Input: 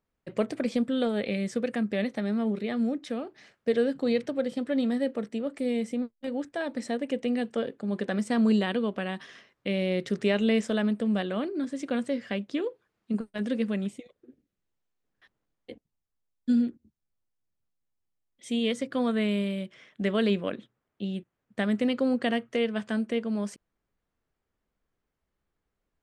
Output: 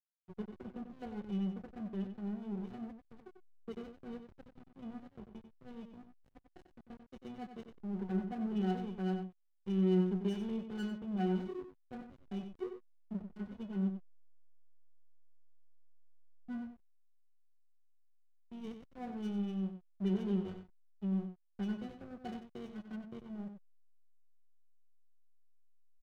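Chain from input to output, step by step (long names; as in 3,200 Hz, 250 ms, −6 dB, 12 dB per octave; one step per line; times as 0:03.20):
resonances in every octave F#, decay 0.26 s
slack as between gear wheels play −41.5 dBFS
slap from a distant wall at 16 metres, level −8 dB
level +3.5 dB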